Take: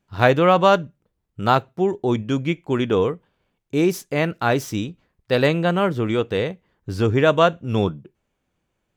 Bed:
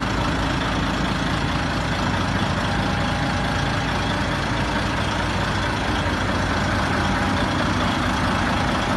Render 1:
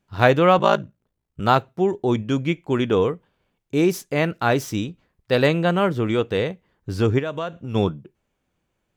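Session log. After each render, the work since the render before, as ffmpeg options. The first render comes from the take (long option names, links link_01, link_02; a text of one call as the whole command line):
ffmpeg -i in.wav -filter_complex "[0:a]asettb=1/sr,asplit=3[link_01][link_02][link_03];[link_01]atrim=end=0.584[link_04];[link_02]atrim=start=0.58:end=1.4,asetpts=PTS-STARTPTS,afade=type=in:duration=0.004:curve=qsin,afade=type=out:start_time=0.816:duration=0.004:curve=qsin,aeval=exprs='val(0)*sin(2*PI*28*n/s)':channel_layout=same[link_05];[link_03]atrim=start=1.396[link_06];[link_04][link_05]acrossfade=duration=0.004:curve1=hsin:curve2=qsin[link_07];[link_07][link_06]acrossfade=duration=0.004:curve1=qsin:curve2=hsin,asplit=3[link_08][link_09][link_10];[link_08]afade=type=out:start_time=7.18:duration=0.02[link_11];[link_09]acompressor=threshold=-27dB:ratio=3:attack=3.2:release=140:knee=1:detection=peak,afade=type=in:start_time=7.18:duration=0.02,afade=type=out:start_time=7.74:duration=0.02[link_12];[link_10]afade=type=in:start_time=7.74:duration=0.02[link_13];[link_11][link_12][link_13]amix=inputs=3:normalize=0" out.wav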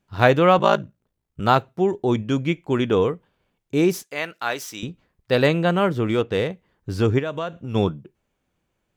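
ffmpeg -i in.wav -filter_complex "[0:a]asettb=1/sr,asplit=3[link_01][link_02][link_03];[link_01]atrim=end=4.034[link_04];[link_02]atrim=start=4.03:end=4.83,asetpts=PTS-STARTPTS,afade=type=in:duration=0.004:curve=qsin,afade=type=out:start_time=0.796:duration=0.004:curve=qsin,highpass=frequency=1400:poles=1[link_05];[link_03]atrim=start=4.826[link_06];[link_04][link_05]acrossfade=duration=0.004:curve1=hsin:curve2=qsin[link_07];[link_07][link_06]acrossfade=duration=0.004:curve1=qsin:curve2=hsin,asettb=1/sr,asplit=3[link_08][link_09][link_10];[link_08]atrim=end=6.094[link_11];[link_09]atrim=start=6.09:end=6.5,asetpts=PTS-STARTPTS,afade=type=in:duration=0.004:curve=qsin,afade=type=out:start_time=0.406:duration=0.004:curve=qsin,adynamicsmooth=sensitivity=5.5:basefreq=5600[link_12];[link_10]atrim=start=6.496[link_13];[link_11][link_12]acrossfade=duration=0.004:curve1=hsin:curve2=qsin[link_14];[link_14][link_13]acrossfade=duration=0.004:curve1=qsin:curve2=hsin" out.wav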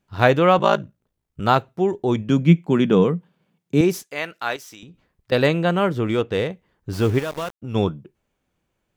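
ffmpeg -i in.wav -filter_complex "[0:a]asettb=1/sr,asplit=3[link_01][link_02][link_03];[link_01]atrim=end=2.294[link_04];[link_02]atrim=start=2.29:end=3.81,asetpts=PTS-STARTPTS,afade=type=in:duration=0.004:curve=qsin,afade=type=out:start_time=1.516:duration=0.004:curve=qsin,highpass=frequency=170:width_type=q:width=4.9[link_05];[link_03]atrim=start=3.806[link_06];[link_04][link_05]acrossfade=duration=0.004:curve1=hsin:curve2=qsin[link_07];[link_07][link_06]acrossfade=duration=0.004:curve1=qsin:curve2=hsin,asettb=1/sr,asplit=3[link_08][link_09][link_10];[link_08]atrim=end=4.564[link_11];[link_09]atrim=start=4.56:end=5.32,asetpts=PTS-STARTPTS,afade=type=in:duration=0.004:curve=qsin,afade=type=out:start_time=0.756:duration=0.004:curve=qsin,acompressor=threshold=-38dB:ratio=10:attack=3.2:release=140:knee=1:detection=peak[link_12];[link_10]atrim=start=5.316[link_13];[link_11][link_12]acrossfade=duration=0.004:curve1=hsin:curve2=qsin[link_14];[link_14][link_13]acrossfade=duration=0.004:curve1=qsin:curve2=hsin,asettb=1/sr,asplit=3[link_15][link_16][link_17];[link_15]atrim=end=6.934[link_18];[link_16]atrim=start=6.93:end=7.62,asetpts=PTS-STARTPTS,afade=type=in:duration=0.004:curve=qsin,afade=type=out:start_time=0.686:duration=0.004:curve=qsin,aeval=exprs='val(0)*gte(abs(val(0)),0.0299)':channel_layout=same[link_19];[link_17]atrim=start=7.616[link_20];[link_18][link_19]acrossfade=duration=0.004:curve1=hsin:curve2=qsin[link_21];[link_21][link_20]acrossfade=duration=0.004:curve1=qsin:curve2=hsin" out.wav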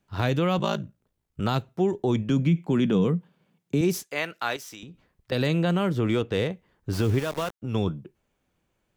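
ffmpeg -i in.wav -filter_complex "[0:a]acrossover=split=280|3000[link_01][link_02][link_03];[link_02]acompressor=threshold=-24dB:ratio=6[link_04];[link_01][link_04][link_03]amix=inputs=3:normalize=0,alimiter=limit=-14dB:level=0:latency=1:release=36" out.wav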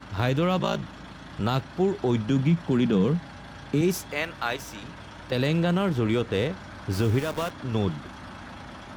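ffmpeg -i in.wav -i bed.wav -filter_complex "[1:a]volume=-20.5dB[link_01];[0:a][link_01]amix=inputs=2:normalize=0" out.wav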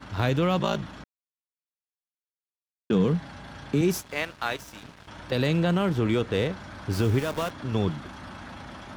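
ffmpeg -i in.wav -filter_complex "[0:a]asettb=1/sr,asplit=3[link_01][link_02][link_03];[link_01]atrim=end=4.004[link_04];[link_02]atrim=start=4:end=5.08,asetpts=PTS-STARTPTS,afade=type=in:duration=0.004:curve=qsin,afade=type=out:start_time=1.076:duration=0.004:curve=qsin,aeval=exprs='sgn(val(0))*max(abs(val(0))-0.00708,0)':channel_layout=same[link_05];[link_03]atrim=start=5.076[link_06];[link_04][link_05]acrossfade=duration=0.004:curve1=hsin:curve2=qsin[link_07];[link_07][link_06]acrossfade=duration=0.004:curve1=qsin:curve2=hsin,asplit=3[link_08][link_09][link_10];[link_08]atrim=end=1.04,asetpts=PTS-STARTPTS,afade=type=out:start_time=1.036:duration=0.004:curve=hsin[link_11];[link_09]atrim=start=1.04:end=2.9,asetpts=PTS-STARTPTS,volume=0[link_12];[link_10]atrim=start=2.9,asetpts=PTS-STARTPTS,afade=type=in:duration=0.004:curve=hsin[link_13];[link_11][link_12][link_13]concat=n=3:v=0:a=1" out.wav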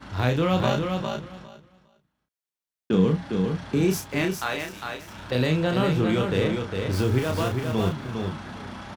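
ffmpeg -i in.wav -filter_complex "[0:a]asplit=2[link_01][link_02];[link_02]adelay=32,volume=-5dB[link_03];[link_01][link_03]amix=inputs=2:normalize=0,aecho=1:1:405|810|1215:0.562|0.09|0.0144" out.wav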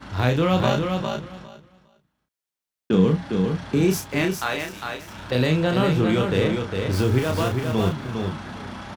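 ffmpeg -i in.wav -af "volume=2.5dB" out.wav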